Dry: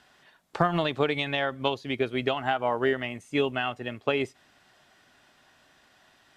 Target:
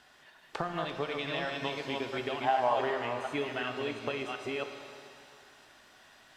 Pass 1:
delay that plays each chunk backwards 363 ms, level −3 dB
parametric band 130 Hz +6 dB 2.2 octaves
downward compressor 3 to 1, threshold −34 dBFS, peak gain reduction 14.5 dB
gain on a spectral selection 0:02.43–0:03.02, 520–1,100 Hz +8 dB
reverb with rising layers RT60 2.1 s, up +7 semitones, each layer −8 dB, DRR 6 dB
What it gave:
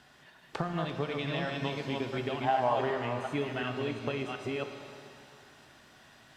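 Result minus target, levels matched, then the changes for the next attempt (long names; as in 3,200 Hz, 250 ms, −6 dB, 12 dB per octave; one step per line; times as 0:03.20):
125 Hz band +8.0 dB
change: parametric band 130 Hz −4.5 dB 2.2 octaves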